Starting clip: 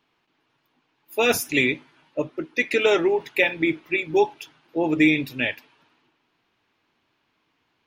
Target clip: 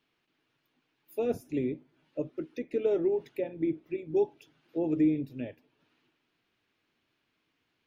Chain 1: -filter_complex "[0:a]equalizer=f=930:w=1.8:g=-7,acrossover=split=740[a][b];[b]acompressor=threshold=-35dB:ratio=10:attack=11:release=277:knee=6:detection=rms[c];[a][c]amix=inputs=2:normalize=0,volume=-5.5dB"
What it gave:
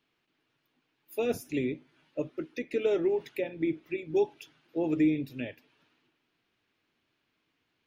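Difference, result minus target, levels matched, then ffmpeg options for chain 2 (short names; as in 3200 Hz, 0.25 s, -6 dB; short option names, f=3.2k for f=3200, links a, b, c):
compressor: peak gain reduction -10 dB
-filter_complex "[0:a]equalizer=f=930:w=1.8:g=-7,acrossover=split=740[a][b];[b]acompressor=threshold=-46dB:ratio=10:attack=11:release=277:knee=6:detection=rms[c];[a][c]amix=inputs=2:normalize=0,volume=-5.5dB"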